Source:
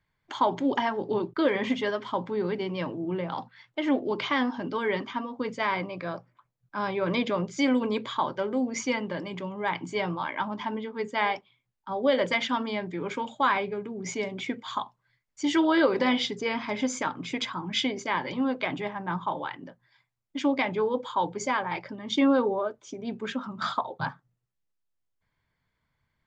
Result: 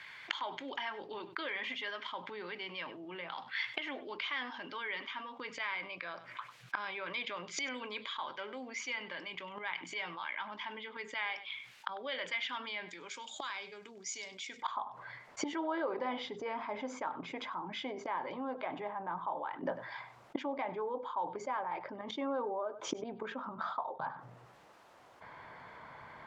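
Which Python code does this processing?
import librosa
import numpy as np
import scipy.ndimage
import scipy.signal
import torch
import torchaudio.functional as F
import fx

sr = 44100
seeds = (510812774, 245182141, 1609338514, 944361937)

y = fx.gate_flip(x, sr, shuts_db=-29.0, range_db=-25)
y = fx.bandpass_q(y, sr, hz=fx.steps((0.0, 2500.0), (12.89, 6100.0), (14.62, 810.0)), q=1.3)
y = y + 10.0 ** (-23.0 / 20.0) * np.pad(y, (int(98 * sr / 1000.0), 0))[:len(y)]
y = fx.env_flatten(y, sr, amount_pct=50)
y = F.gain(torch.from_numpy(y), 15.0).numpy()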